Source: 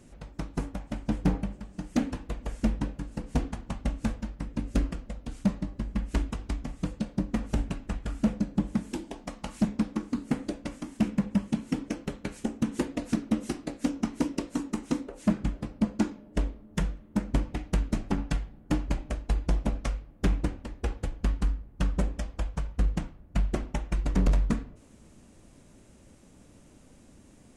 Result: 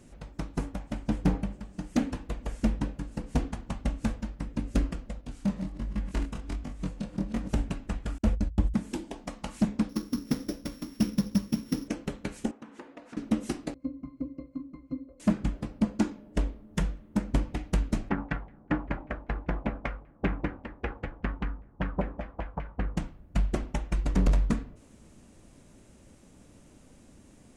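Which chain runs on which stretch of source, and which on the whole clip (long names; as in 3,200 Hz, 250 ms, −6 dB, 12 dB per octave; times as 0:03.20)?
0:05.21–0:07.49: delay that plays each chunk backwards 163 ms, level −9.5 dB + chorus effect 1.3 Hz, delay 19.5 ms, depth 6.7 ms
0:08.18–0:08.74: noise gate −37 dBFS, range −38 dB + low shelf with overshoot 110 Hz +11 dB, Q 3 + hum removal 54.76 Hz, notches 3
0:09.89–0:11.88: samples sorted by size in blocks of 8 samples + parametric band 780 Hz −7 dB 0.71 octaves
0:12.51–0:13.17: resonant band-pass 1,100 Hz, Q 0.85 + downward compressor 2 to 1, threshold −46 dBFS
0:13.74–0:15.20: high-shelf EQ 2,400 Hz −10 dB + resonances in every octave C, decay 0.14 s
0:18.09–0:22.97: low-shelf EQ 75 Hz −10.5 dB + auto-filter low-pass saw down 5.1 Hz 780–2,300 Hz
whole clip: no processing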